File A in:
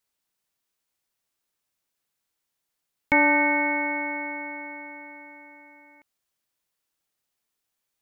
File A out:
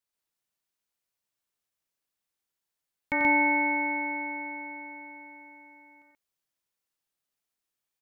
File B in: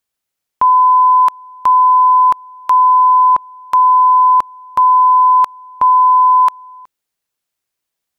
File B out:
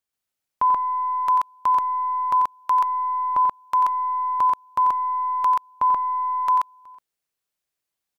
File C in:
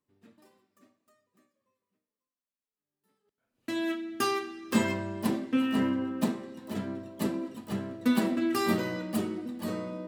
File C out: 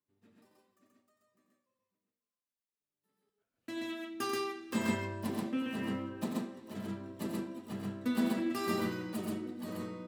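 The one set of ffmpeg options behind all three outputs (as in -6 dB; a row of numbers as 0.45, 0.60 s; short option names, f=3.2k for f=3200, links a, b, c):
-af "aeval=exprs='0.531*(cos(1*acos(clip(val(0)/0.531,-1,1)))-cos(1*PI/2))+0.00299*(cos(2*acos(clip(val(0)/0.531,-1,1)))-cos(2*PI/2))':c=same,aecho=1:1:90.38|131.2:0.398|0.891,volume=-8.5dB"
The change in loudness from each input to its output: -3.5, -11.5, -6.0 LU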